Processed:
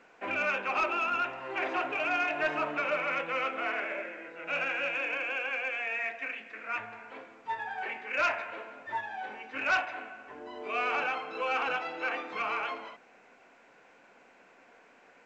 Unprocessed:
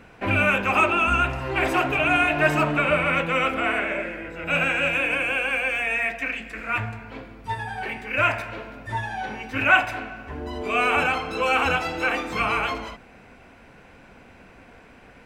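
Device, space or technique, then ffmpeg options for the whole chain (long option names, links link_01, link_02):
telephone: -filter_complex "[0:a]asettb=1/sr,asplit=3[link_01][link_02][link_03];[link_01]atrim=end=6.914[link_04];[link_02]atrim=start=6.91:end=9.01,asetpts=PTS-STARTPTS,afade=type=in:duration=0.004:curve=qsin,afade=type=out:start_time=2.096:duration=0.004:curve=qsin,equalizer=frequency=1300:width=0.32:gain=3.5[link_05];[link_03]atrim=start=9.006[link_06];[link_04][link_05]acrossfade=duration=0.004:curve1=hsin:curve2=qsin[link_07];[link_07][link_06]acrossfade=duration=0.004:curve1=qsin:curve2=hsin,highpass=390,lowpass=3100,asoftclip=type=tanh:threshold=-12dB,volume=-7.5dB" -ar 16000 -c:a pcm_alaw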